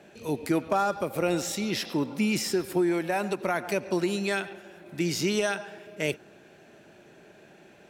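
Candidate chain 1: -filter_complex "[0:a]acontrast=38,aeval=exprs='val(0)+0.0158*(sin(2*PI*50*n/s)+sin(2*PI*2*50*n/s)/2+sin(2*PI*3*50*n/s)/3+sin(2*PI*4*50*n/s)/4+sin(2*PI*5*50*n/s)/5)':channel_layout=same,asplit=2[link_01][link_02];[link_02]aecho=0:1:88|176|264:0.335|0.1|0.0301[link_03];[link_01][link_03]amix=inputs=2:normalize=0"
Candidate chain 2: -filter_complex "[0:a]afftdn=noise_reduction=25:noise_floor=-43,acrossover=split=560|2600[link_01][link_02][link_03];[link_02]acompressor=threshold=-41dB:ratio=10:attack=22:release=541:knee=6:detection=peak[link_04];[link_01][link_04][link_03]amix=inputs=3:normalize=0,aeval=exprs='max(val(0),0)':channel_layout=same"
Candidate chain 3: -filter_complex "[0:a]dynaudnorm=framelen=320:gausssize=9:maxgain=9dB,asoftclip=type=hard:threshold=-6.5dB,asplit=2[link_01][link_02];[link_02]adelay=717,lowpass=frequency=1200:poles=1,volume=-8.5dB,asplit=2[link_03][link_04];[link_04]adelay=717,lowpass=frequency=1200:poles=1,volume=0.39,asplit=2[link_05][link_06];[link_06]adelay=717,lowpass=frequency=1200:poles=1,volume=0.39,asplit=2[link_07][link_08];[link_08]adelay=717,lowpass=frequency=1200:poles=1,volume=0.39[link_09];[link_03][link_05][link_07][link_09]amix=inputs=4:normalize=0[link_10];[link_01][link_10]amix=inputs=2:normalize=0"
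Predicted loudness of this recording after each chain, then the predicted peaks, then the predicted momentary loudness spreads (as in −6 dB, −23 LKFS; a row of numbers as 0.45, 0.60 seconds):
−22.5, −35.0, −21.0 LKFS; −7.0, −15.5, −5.0 dBFS; 20, 9, 15 LU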